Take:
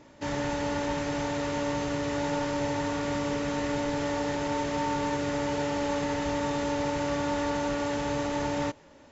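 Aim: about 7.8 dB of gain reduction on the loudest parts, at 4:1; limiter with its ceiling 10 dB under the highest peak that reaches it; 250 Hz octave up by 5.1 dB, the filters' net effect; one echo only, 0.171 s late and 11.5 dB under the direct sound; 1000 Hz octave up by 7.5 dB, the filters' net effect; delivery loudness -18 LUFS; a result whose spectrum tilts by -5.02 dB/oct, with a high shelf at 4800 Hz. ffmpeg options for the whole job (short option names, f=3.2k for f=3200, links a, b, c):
-af "equalizer=f=250:t=o:g=5.5,equalizer=f=1k:t=o:g=8.5,highshelf=f=4.8k:g=-3.5,acompressor=threshold=-30dB:ratio=4,alimiter=level_in=6dB:limit=-24dB:level=0:latency=1,volume=-6dB,aecho=1:1:171:0.266,volume=19.5dB"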